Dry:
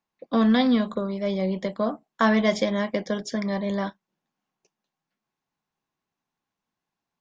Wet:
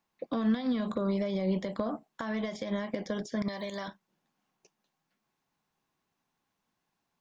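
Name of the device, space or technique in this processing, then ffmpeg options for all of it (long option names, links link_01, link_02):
de-esser from a sidechain: -filter_complex "[0:a]asettb=1/sr,asplit=3[link_01][link_02][link_03];[link_01]atrim=end=3.484[link_04];[link_02]atrim=start=3.48:end=3.88,asetpts=PTS-STARTPTS,afade=type=in:duration=0.004:curve=qsin,afade=type=out:start_time=0.396:duration=0.004:curve=qsin,aemphasis=mode=production:type=riaa[link_05];[link_03]atrim=start=3.876[link_06];[link_04][link_05]acrossfade=duration=0.004:curve1=hsin:curve2=qsin[link_07];[link_07][link_06]acrossfade=duration=0.004:curve1=qsin:curve2=hsin,asplit=2[link_08][link_09];[link_09]highpass=frequency=5600:poles=1,apad=whole_len=317567[link_10];[link_08][link_10]sidechaincompress=threshold=-51dB:ratio=12:attack=4.2:release=75,volume=4dB"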